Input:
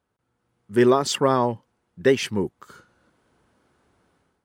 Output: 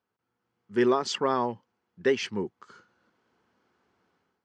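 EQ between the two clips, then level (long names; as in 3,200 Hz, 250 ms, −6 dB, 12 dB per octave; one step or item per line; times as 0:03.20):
loudspeaker in its box 130–6,300 Hz, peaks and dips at 140 Hz −8 dB, 290 Hz −4 dB, 590 Hz −5 dB
notch filter 3,700 Hz, Q 18
−4.5 dB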